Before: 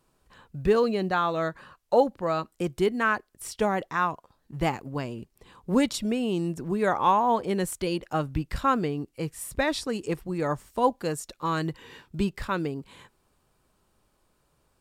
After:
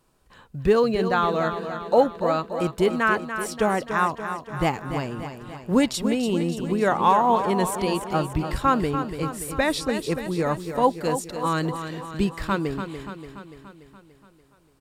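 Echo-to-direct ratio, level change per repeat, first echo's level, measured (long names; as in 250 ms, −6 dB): −7.0 dB, −4.5 dB, −9.0 dB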